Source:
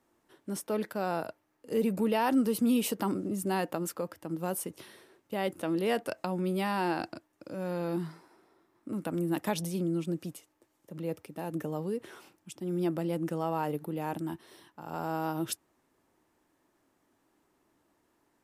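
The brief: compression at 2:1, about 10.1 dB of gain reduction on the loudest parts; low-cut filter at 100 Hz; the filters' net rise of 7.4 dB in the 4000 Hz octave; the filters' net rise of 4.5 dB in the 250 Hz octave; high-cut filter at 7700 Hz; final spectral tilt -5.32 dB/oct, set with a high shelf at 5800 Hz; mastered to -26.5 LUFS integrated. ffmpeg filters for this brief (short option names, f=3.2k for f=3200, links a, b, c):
-af "highpass=100,lowpass=7.7k,equalizer=f=250:t=o:g=6,equalizer=f=4k:t=o:g=7.5,highshelf=f=5.8k:g=7.5,acompressor=threshold=-36dB:ratio=2,volume=10dB"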